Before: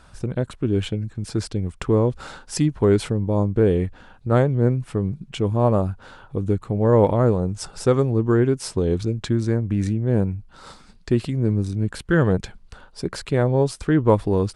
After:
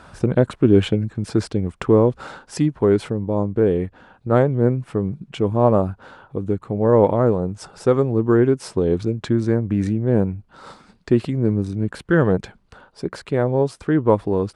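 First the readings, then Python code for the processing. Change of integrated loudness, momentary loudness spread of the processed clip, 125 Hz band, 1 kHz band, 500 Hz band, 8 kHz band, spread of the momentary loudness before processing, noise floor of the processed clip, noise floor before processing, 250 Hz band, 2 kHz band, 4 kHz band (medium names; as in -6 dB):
+2.0 dB, 11 LU, -0.5 dB, +2.0 dB, +3.0 dB, no reading, 10 LU, -57 dBFS, -50 dBFS, +2.5 dB, +1.0 dB, -1.5 dB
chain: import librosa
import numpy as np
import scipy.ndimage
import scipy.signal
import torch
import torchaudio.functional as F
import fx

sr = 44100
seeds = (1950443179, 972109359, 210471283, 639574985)

y = fx.highpass(x, sr, hz=180.0, slope=6)
y = fx.high_shelf(y, sr, hz=2700.0, db=-10.5)
y = fx.rider(y, sr, range_db=10, speed_s=2.0)
y = y * 10.0 ** (4.0 / 20.0)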